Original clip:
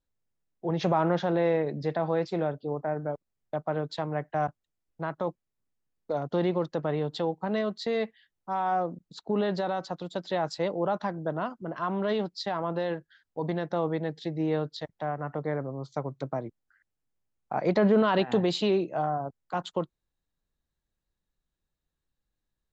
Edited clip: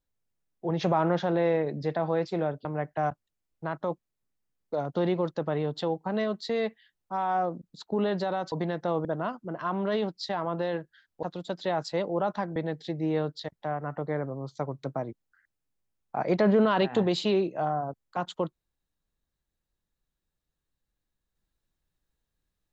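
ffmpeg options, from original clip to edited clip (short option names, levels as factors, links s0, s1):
-filter_complex "[0:a]asplit=6[s0][s1][s2][s3][s4][s5];[s0]atrim=end=2.652[s6];[s1]atrim=start=4.018:end=9.892[s7];[s2]atrim=start=13.398:end=13.932[s8];[s3]atrim=start=11.218:end=13.402[s9];[s4]atrim=start=9.888:end=11.222[s10];[s5]atrim=start=13.928[s11];[s6][s7]acrossfade=d=0.004:c1=hsin:c2=hsin[s12];[s12][s8]acrossfade=d=0.004:c1=hsin:c2=hsin[s13];[s13][s9]acrossfade=d=0.004:c1=hsin:c2=hsin[s14];[s14][s10]acrossfade=d=0.004:c1=hsin:c2=hsin[s15];[s15][s11]acrossfade=d=0.004:c1=hsin:c2=hsin"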